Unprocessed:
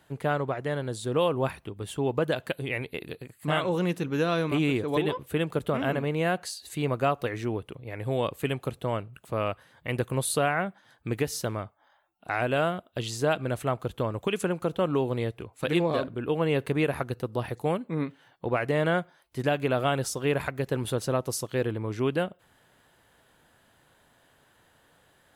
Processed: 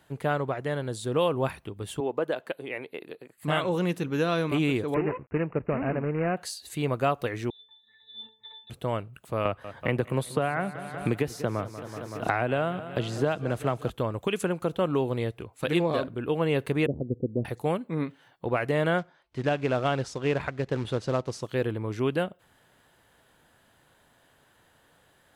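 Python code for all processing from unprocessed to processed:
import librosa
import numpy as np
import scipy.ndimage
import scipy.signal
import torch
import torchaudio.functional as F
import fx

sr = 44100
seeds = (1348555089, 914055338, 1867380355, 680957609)

y = fx.chain(x, sr, fx.highpass(hz=310.0, slope=12),
    fx.high_shelf(hz=2300.0, db=-10.0), at=(2.0, 3.38))
y = fx.chain(y, sr, fx.dead_time(dead_ms=0.2),
    fx.high_shelf(hz=3100.0, db=-11.0),
    fx.resample_bad(factor=8, down='none', up='filtered'), at=(4.94, 6.37))
y = fx.chain(y, sr, fx.highpass(hz=49.0, slope=12),
    fx.freq_invert(carrier_hz=3900),
    fx.octave_resonator(note='A', decay_s=0.33), at=(7.5, 8.7))
y = fx.chain(y, sr, fx.high_shelf(hz=3200.0, db=-10.0),
    fx.echo_feedback(ms=189, feedback_pct=58, wet_db=-17),
    fx.band_squash(depth_pct=100), at=(9.45, 13.9))
y = fx.chain(y, sr, fx.steep_lowpass(hz=530.0, slope=36),
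    fx.peak_eq(hz=240.0, db=7.0, octaves=1.1), at=(16.86, 17.45))
y = fx.chain(y, sr, fx.quant_float(bits=2),
    fx.air_absorb(metres=120.0), at=(18.98, 21.43))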